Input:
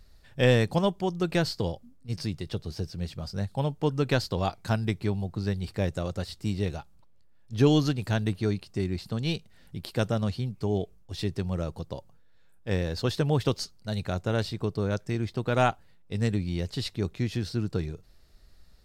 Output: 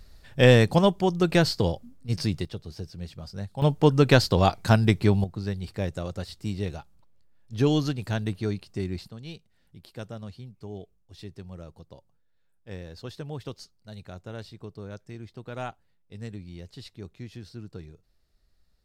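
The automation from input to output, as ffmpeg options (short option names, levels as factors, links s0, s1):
-af "asetnsamples=n=441:p=0,asendcmd='2.45 volume volume -4dB;3.62 volume volume 7.5dB;5.24 volume volume -1.5dB;9.08 volume volume -11.5dB',volume=1.78"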